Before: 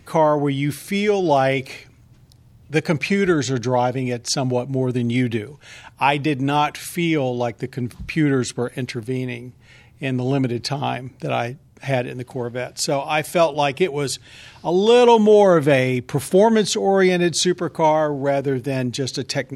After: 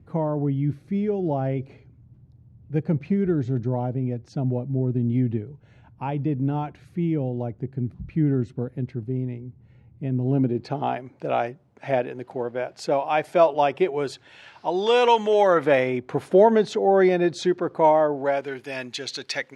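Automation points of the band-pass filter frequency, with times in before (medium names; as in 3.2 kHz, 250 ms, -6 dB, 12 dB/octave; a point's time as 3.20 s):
band-pass filter, Q 0.64
10.16 s 120 Hz
11.00 s 670 Hz
14.00 s 670 Hz
15.23 s 1.9 kHz
16.04 s 590 Hz
18.09 s 590 Hz
18.50 s 2.1 kHz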